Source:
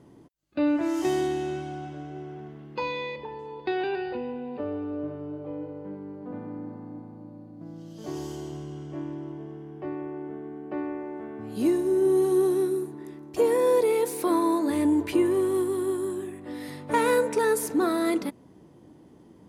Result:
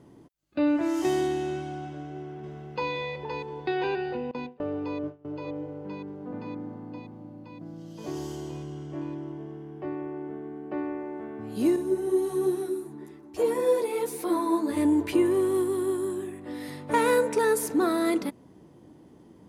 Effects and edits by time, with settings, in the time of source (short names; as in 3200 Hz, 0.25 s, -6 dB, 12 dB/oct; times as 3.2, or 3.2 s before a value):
1.91–2.9 echo throw 0.52 s, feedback 80%, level -5 dB
4.31–5.25 gate with hold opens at -24 dBFS, closes at -29 dBFS
11.76–14.77 ensemble effect